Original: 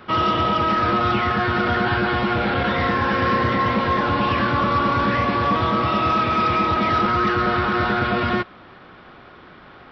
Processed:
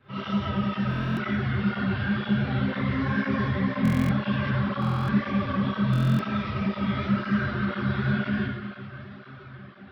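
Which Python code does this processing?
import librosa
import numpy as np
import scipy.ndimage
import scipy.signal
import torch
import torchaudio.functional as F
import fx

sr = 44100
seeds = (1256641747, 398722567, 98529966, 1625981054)

p1 = fx.high_shelf(x, sr, hz=3300.0, db=7.0)
p2 = fx.resonator_bank(p1, sr, root=48, chord='fifth', decay_s=0.23)
p3 = p2 + fx.echo_diffused(p2, sr, ms=654, feedback_pct=63, wet_db=-15, dry=0)
p4 = fx.dereverb_blind(p3, sr, rt60_s=0.75)
p5 = fx.bass_treble(p4, sr, bass_db=13, treble_db=-12)
p6 = fx.hum_notches(p5, sr, base_hz=60, count=6)
p7 = fx.rev_schroeder(p6, sr, rt60_s=1.3, comb_ms=30, drr_db=-9.0)
p8 = fx.buffer_glitch(p7, sr, at_s=(0.89, 3.83, 4.8, 5.91), block=1024, repeats=11)
p9 = fx.flanger_cancel(p8, sr, hz=2.0, depth_ms=5.9)
y = p9 * librosa.db_to_amplitude(-3.5)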